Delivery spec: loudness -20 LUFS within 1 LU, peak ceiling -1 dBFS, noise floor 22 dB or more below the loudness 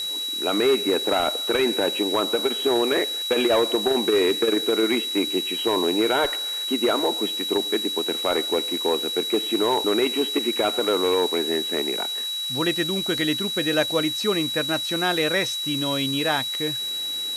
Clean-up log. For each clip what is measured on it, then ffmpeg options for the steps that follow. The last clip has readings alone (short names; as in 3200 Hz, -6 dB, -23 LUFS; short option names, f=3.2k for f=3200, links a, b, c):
steady tone 3900 Hz; tone level -26 dBFS; noise floor -29 dBFS; noise floor target -44 dBFS; loudness -22.0 LUFS; peak -7.5 dBFS; loudness target -20.0 LUFS
-> -af "bandreject=f=3.9k:w=30"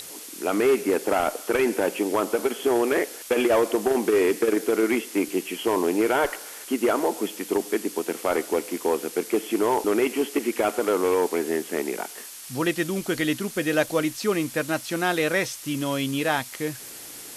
steady tone none; noise floor -40 dBFS; noise floor target -47 dBFS
-> -af "afftdn=nr=7:nf=-40"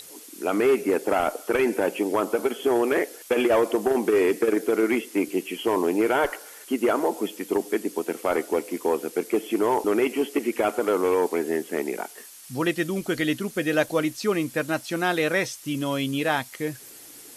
noise floor -45 dBFS; noise floor target -47 dBFS
-> -af "afftdn=nr=6:nf=-45"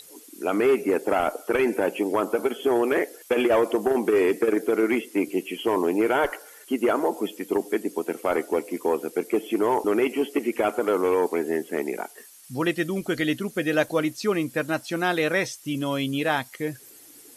noise floor -49 dBFS; loudness -25.0 LUFS; peak -8.5 dBFS; loudness target -20.0 LUFS
-> -af "volume=5dB"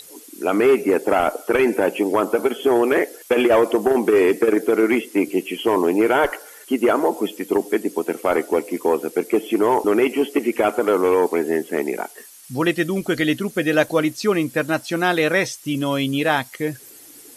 loudness -20.0 LUFS; peak -3.5 dBFS; noise floor -44 dBFS